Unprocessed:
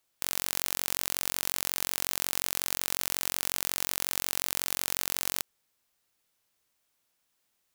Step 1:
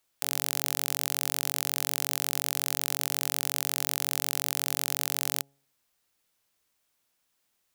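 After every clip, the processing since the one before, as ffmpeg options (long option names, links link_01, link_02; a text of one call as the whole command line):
ffmpeg -i in.wav -af "bandreject=frequency=138.9:width_type=h:width=4,bandreject=frequency=277.8:width_type=h:width=4,bandreject=frequency=416.7:width_type=h:width=4,bandreject=frequency=555.6:width_type=h:width=4,bandreject=frequency=694.5:width_type=h:width=4,bandreject=frequency=833.4:width_type=h:width=4,volume=1dB" out.wav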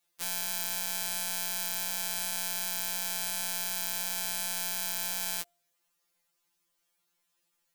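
ffmpeg -i in.wav -af "afftfilt=real='re*2.83*eq(mod(b,8),0)':imag='im*2.83*eq(mod(b,8),0)':win_size=2048:overlap=0.75" out.wav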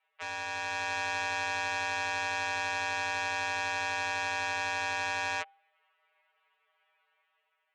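ffmpeg -i in.wav -af "highpass=frequency=440:width_type=q:width=0.5412,highpass=frequency=440:width_type=q:width=1.307,lowpass=frequency=2700:width_type=q:width=0.5176,lowpass=frequency=2700:width_type=q:width=0.7071,lowpass=frequency=2700:width_type=q:width=1.932,afreqshift=97,aeval=exprs='0.0299*sin(PI/2*1.78*val(0)/0.0299)':channel_layout=same,dynaudnorm=framelen=150:gausssize=9:maxgain=5dB" out.wav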